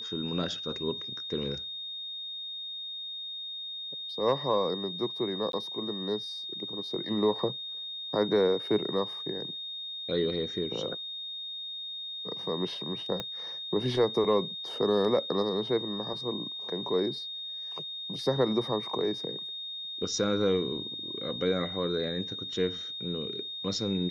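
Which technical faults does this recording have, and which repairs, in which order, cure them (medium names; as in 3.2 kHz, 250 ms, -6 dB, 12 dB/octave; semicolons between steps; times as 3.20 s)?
whine 3.7 kHz -36 dBFS
5.52–5.53 s: dropout 12 ms
13.20 s: pop -19 dBFS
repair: de-click; band-stop 3.7 kHz, Q 30; interpolate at 5.52 s, 12 ms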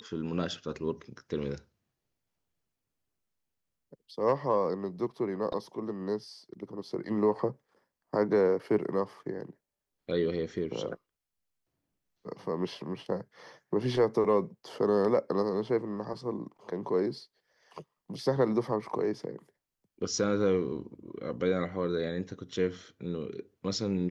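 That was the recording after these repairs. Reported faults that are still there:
13.20 s: pop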